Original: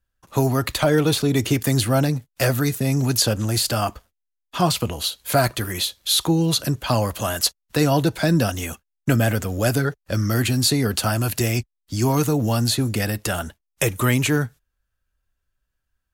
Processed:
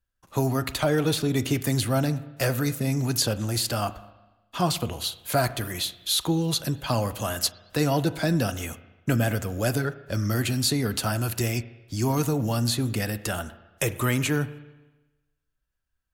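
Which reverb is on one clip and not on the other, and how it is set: spring tank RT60 1.1 s, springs 34/38 ms, chirp 80 ms, DRR 13.5 dB; trim -5 dB

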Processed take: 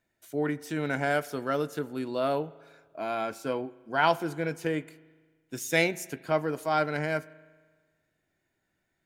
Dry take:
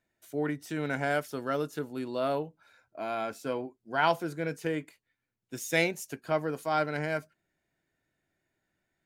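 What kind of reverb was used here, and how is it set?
spring tank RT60 1.5 s, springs 38 ms, chirp 65 ms, DRR 19 dB; trim +2 dB

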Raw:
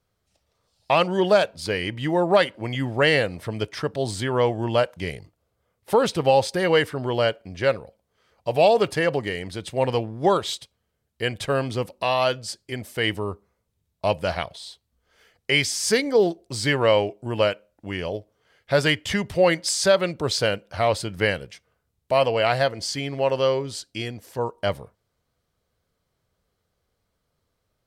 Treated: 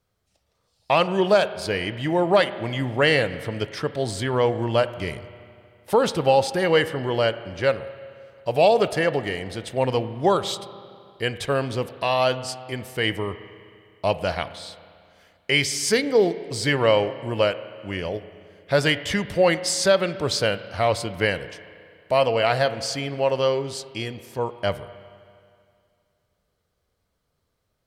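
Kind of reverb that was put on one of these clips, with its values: spring tank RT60 2.3 s, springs 31/35 ms, chirp 25 ms, DRR 13 dB

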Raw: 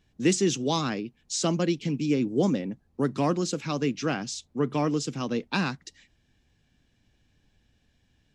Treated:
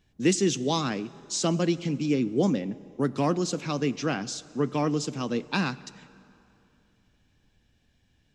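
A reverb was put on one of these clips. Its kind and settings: plate-style reverb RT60 2.8 s, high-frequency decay 0.7×, DRR 17.5 dB

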